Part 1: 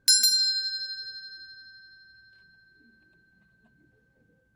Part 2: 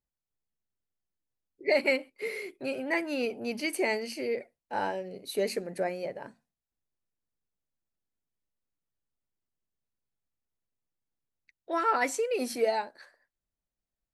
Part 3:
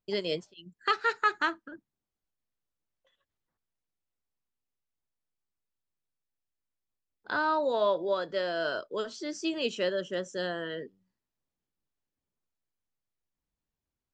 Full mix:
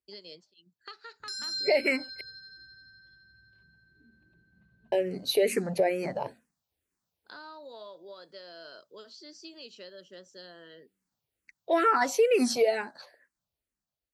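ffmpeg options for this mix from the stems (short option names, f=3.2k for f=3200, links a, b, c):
-filter_complex "[0:a]lowshelf=f=250:g=11.5,alimiter=limit=-19.5dB:level=0:latency=1:release=22,lowpass=4.8k,adelay=1200,volume=-5.5dB[a];[1:a]dynaudnorm=f=600:g=5:m=12.5dB,asplit=2[b][c];[c]afreqshift=-2.2[d];[b][d]amix=inputs=2:normalize=1,volume=-1dB,asplit=3[e][f][g];[e]atrim=end=2.21,asetpts=PTS-STARTPTS,afade=t=out:st=2.206:d=0.004:c=hsin[h];[f]atrim=start=2.21:end=4.92,asetpts=PTS-STARTPTS,volume=0[i];[g]atrim=start=4.92,asetpts=PTS-STARTPTS,afade=t=in:d=0.004:c=hsin[j];[h][i][j]concat=n=3:v=0:a=1[k];[2:a]highpass=130,equalizer=f=4.5k:w=2.6:g=14,acompressor=threshold=-28dB:ratio=5,volume=-14.5dB[l];[a][k][l]amix=inputs=3:normalize=0,highpass=51,alimiter=limit=-15dB:level=0:latency=1:release=250"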